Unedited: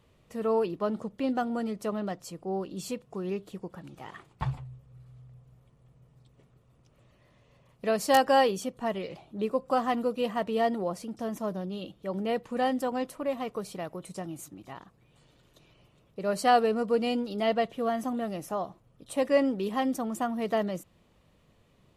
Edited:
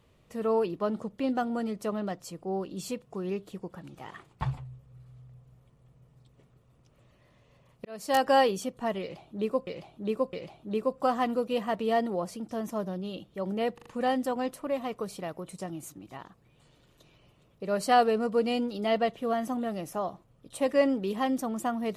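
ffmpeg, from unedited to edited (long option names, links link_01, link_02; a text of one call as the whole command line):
ffmpeg -i in.wav -filter_complex "[0:a]asplit=7[link_01][link_02][link_03][link_04][link_05][link_06][link_07];[link_01]atrim=end=7.85,asetpts=PTS-STARTPTS,afade=type=out:start_time=7.846:duration=0.004:curve=hsin[link_08];[link_02]atrim=start=7.85:end=9.672,asetpts=PTS-STARTPTS,afade=type=in:duration=0.45[link_09];[link_03]atrim=start=9.008:end=9.672[link_10];[link_04]atrim=start=9.008:end=12.462[link_11];[link_05]atrim=start=12.418:end=12.462[link_12];[link_06]atrim=start=12.418:end=12.462[link_13];[link_07]atrim=start=12.418[link_14];[link_08][link_09]concat=n=2:v=0:a=1[link_15];[link_15][link_10]acrossfade=duration=0.004:curve1=hsin:curve2=hsin[link_16];[link_16][link_11]acrossfade=duration=0.004:curve1=hsin:curve2=hsin[link_17];[link_17][link_12]acrossfade=duration=0.004:curve1=hsin:curve2=hsin[link_18];[link_18][link_13]acrossfade=duration=0.004:curve1=hsin:curve2=hsin[link_19];[link_19][link_14]acrossfade=duration=0.004:curve1=hsin:curve2=hsin" out.wav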